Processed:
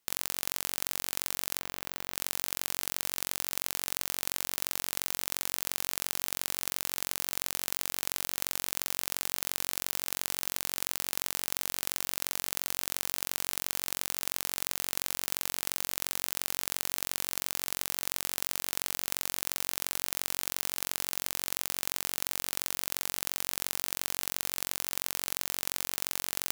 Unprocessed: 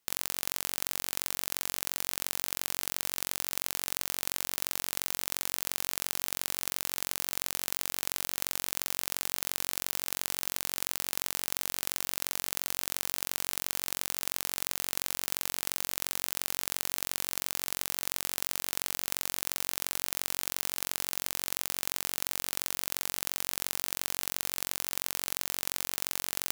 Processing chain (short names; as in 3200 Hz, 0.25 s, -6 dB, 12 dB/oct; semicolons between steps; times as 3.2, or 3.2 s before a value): 1.59–2.14 bell 10000 Hz -12 dB 2.2 oct